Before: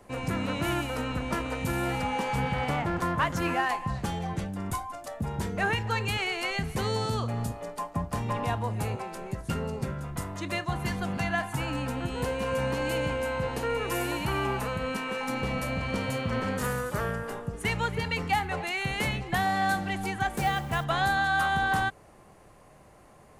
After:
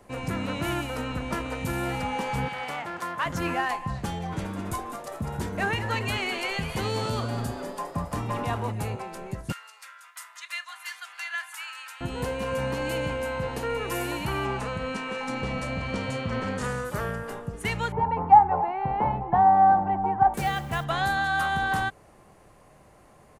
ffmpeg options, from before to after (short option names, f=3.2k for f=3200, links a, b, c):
-filter_complex "[0:a]asettb=1/sr,asplit=3[a][b][c];[a]atrim=end=2.484[d];[b]atrim=start=2.48:end=3.26,asetpts=PTS-STARTPTS,afade=t=in:d=0.004:c=qsin,afade=t=out:st=0.776:d=0.004:c=qsin,highpass=f=850:p=1[e];[c]atrim=start=3.256[f];[d][e]acrossfade=d=0.004:c1=hsin:c2=qsin[g];[g][f]acrossfade=d=0.004:c1=qsin:c2=hsin,asplit=3[h][i][j];[h]afade=t=out:st=4.31:d=0.02[k];[i]asplit=8[l][m][n][o][p][q][r][s];[m]adelay=203,afreqshift=140,volume=-9.5dB[t];[n]adelay=406,afreqshift=280,volume=-14.2dB[u];[o]adelay=609,afreqshift=420,volume=-19dB[v];[p]adelay=812,afreqshift=560,volume=-23.7dB[w];[q]adelay=1015,afreqshift=700,volume=-28.4dB[x];[r]adelay=1218,afreqshift=840,volume=-33.2dB[y];[s]adelay=1421,afreqshift=980,volume=-37.9dB[z];[l][t][u][v][w][x][y][z]amix=inputs=8:normalize=0,afade=t=in:st=4.31:d=0.02,afade=t=out:st=8.7:d=0.02[aa];[j]afade=t=in:st=8.7:d=0.02[ab];[k][aa][ab]amix=inputs=3:normalize=0,asettb=1/sr,asplit=3[ac][ad][ae];[ac]atrim=end=9.524[af];[ad]atrim=start=9.52:end=12.01,asetpts=PTS-STARTPTS,afade=t=in:d=0.004:c=qsin,afade=t=out:st=2.486:d=0.004:c=qsin,highpass=f=1.3k:w=0.5412,highpass=f=1.3k:w=1.3066[ag];[ae]atrim=start=12.006[ah];[af][ag]acrossfade=d=0.004:c1=hsin:c2=qsin[ai];[ai][ah]acrossfade=d=0.004:c1=qsin:c2=hsin,asettb=1/sr,asplit=3[aj][ak][al];[aj]atrim=end=14.454[am];[ak]atrim=start=14.45:end=16.85,asetpts=PTS-STARTPTS,afade=t=in:d=0.004:c=qsin,afade=t=out:st=2.396:d=0.004:c=qsin,lowpass=f=8.8k:w=0.5412,lowpass=f=8.8k:w=1.3066[an];[al]atrim=start=16.846[ao];[am][an]acrossfade=d=0.004:c1=hsin:c2=qsin[ap];[ap][ao]acrossfade=d=0.004:c1=qsin:c2=hsin,asettb=1/sr,asplit=3[aq][ar][as];[aq]atrim=end=17.924[at];[ar]atrim=start=17.92:end=20.34,asetpts=PTS-STARTPTS,afade=t=in:d=0.004:c=qsin,afade=t=out:st=2.416:d=0.004:c=qsin,lowpass=f=890:t=q:w=6.9[au];[as]atrim=start=20.336[av];[at][au]acrossfade=d=0.004:c1=hsin:c2=qsin[aw];[aw][av]acrossfade=d=0.004:c1=qsin:c2=hsin"